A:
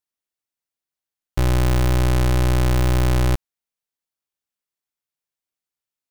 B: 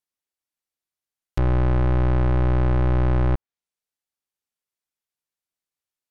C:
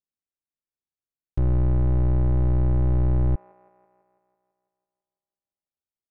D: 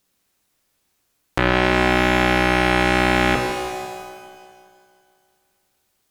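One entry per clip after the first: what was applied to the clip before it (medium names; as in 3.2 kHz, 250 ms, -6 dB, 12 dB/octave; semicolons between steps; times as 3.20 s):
low-pass that closes with the level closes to 1.6 kHz, closed at -19.5 dBFS; trim -1.5 dB
tilt shelf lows +8.5 dB, about 690 Hz; feedback echo behind a band-pass 166 ms, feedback 63%, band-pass 1.1 kHz, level -14 dB; trim -9 dB
sine folder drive 13 dB, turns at -17.5 dBFS; pitch-shifted reverb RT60 1.5 s, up +12 st, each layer -8 dB, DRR 3.5 dB; trim +8 dB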